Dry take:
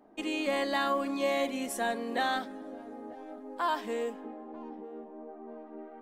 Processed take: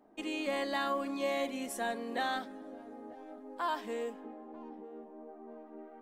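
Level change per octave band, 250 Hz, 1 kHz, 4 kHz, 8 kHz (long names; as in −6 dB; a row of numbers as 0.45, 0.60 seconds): −4.0, −4.0, −4.0, −4.0 decibels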